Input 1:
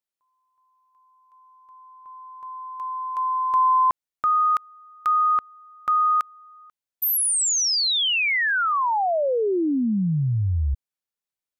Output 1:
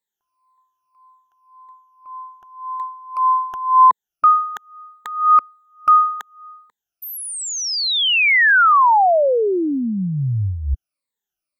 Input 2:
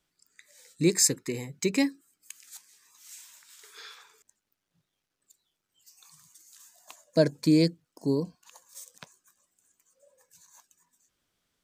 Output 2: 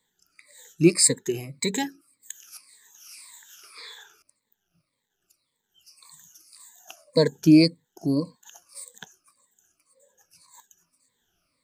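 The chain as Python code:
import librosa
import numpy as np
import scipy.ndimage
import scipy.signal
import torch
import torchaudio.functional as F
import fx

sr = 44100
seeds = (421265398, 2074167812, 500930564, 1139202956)

y = fx.spec_ripple(x, sr, per_octave=0.99, drift_hz=-1.8, depth_db=20)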